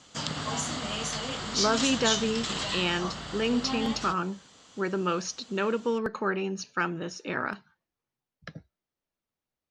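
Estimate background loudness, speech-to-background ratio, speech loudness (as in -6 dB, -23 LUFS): -31.0 LUFS, 1.0 dB, -30.0 LUFS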